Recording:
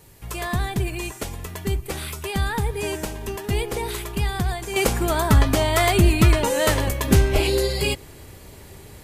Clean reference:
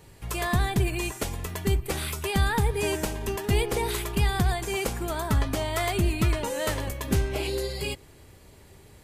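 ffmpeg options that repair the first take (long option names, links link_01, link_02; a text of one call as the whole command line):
ffmpeg -i in.wav -filter_complex "[0:a]asplit=3[link_01][link_02][link_03];[link_01]afade=type=out:start_time=7.33:duration=0.02[link_04];[link_02]highpass=frequency=140:width=0.5412,highpass=frequency=140:width=1.3066,afade=type=in:start_time=7.33:duration=0.02,afade=type=out:start_time=7.45:duration=0.02[link_05];[link_03]afade=type=in:start_time=7.45:duration=0.02[link_06];[link_04][link_05][link_06]amix=inputs=3:normalize=0,agate=range=-21dB:threshold=-34dB,asetnsamples=nb_out_samples=441:pad=0,asendcmd='4.76 volume volume -8.5dB',volume=0dB" out.wav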